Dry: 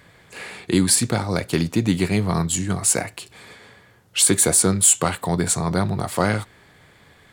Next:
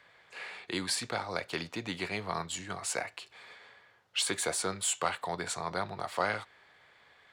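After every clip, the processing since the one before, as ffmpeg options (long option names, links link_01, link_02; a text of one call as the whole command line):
ffmpeg -i in.wav -filter_complex "[0:a]acrossover=split=500 5400:gain=0.158 1 0.178[link_01][link_02][link_03];[link_01][link_02][link_03]amix=inputs=3:normalize=0,volume=-6.5dB" out.wav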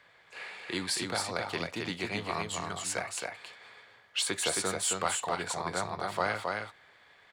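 ffmpeg -i in.wav -af "aecho=1:1:269:0.668" out.wav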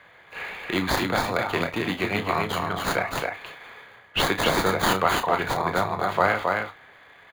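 ffmpeg -i in.wav -filter_complex "[0:a]acrossover=split=3700[link_01][link_02];[link_02]acrusher=samples=16:mix=1:aa=0.000001[link_03];[link_01][link_03]amix=inputs=2:normalize=0,asplit=2[link_04][link_05];[link_05]adelay=32,volume=-9.5dB[link_06];[link_04][link_06]amix=inputs=2:normalize=0,volume=9dB" out.wav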